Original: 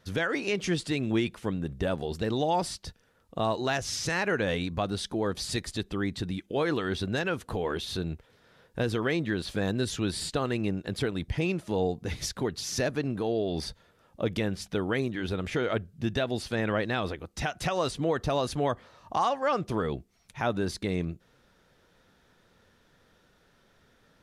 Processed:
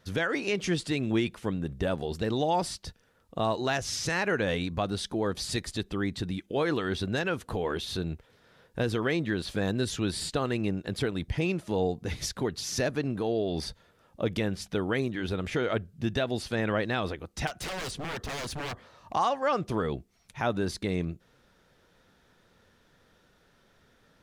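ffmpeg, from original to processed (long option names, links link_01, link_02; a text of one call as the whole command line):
ffmpeg -i in.wav -filter_complex "[0:a]asettb=1/sr,asplit=3[link_01][link_02][link_03];[link_01]atrim=end=17.474[link_04];[link_02]atrim=start=17.47:end=19.13,asetpts=PTS-STARTPTS,afade=type=in:duration=0.004:curve=qsin,afade=type=out:start_time=1.656:duration=0.004:curve=qsin,aeval=exprs='0.0316*(abs(mod(val(0)/0.0316+3,4)-2)-1)':channel_layout=same[link_05];[link_03]atrim=start=19.126[link_06];[link_04][link_05]acrossfade=duration=0.004:curve1=hsin:curve2=qsin[link_07];[link_07][link_06]acrossfade=duration=0.004:curve1=qsin:curve2=hsin" out.wav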